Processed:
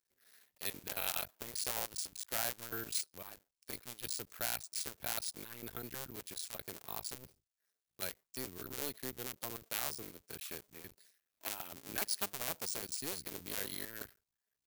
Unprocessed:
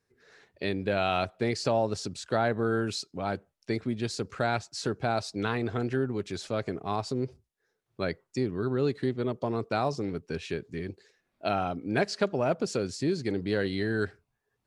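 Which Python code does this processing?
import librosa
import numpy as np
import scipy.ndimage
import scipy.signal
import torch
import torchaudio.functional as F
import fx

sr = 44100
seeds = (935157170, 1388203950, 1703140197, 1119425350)

y = fx.cycle_switch(x, sr, every=2, mode='muted')
y = np.repeat(y[::3], 3)[:len(y)]
y = librosa.effects.preemphasis(y, coef=0.9, zi=[0.0])
y = y * 10.0 ** (2.5 / 20.0)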